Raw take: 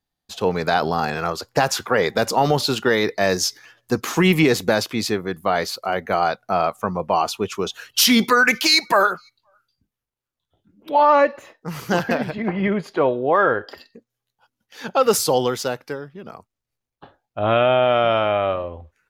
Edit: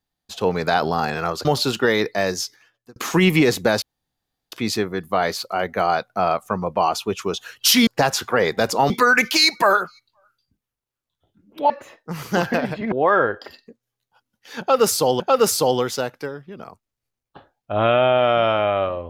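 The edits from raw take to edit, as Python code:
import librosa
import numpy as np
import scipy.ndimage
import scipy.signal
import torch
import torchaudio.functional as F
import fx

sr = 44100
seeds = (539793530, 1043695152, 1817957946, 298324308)

y = fx.edit(x, sr, fx.move(start_s=1.45, length_s=1.03, to_s=8.2),
    fx.fade_out_span(start_s=3.03, length_s=0.96),
    fx.insert_room_tone(at_s=4.85, length_s=0.7),
    fx.cut(start_s=11.0, length_s=0.27),
    fx.cut(start_s=12.49, length_s=0.7),
    fx.repeat(start_s=14.87, length_s=0.6, count=2), tone=tone)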